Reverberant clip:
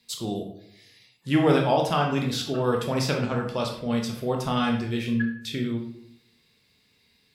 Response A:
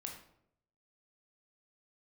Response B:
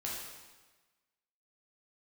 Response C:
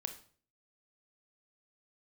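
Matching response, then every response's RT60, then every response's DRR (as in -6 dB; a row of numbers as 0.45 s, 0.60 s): A; 0.75 s, 1.3 s, 0.45 s; 1.0 dB, -5.0 dB, 7.0 dB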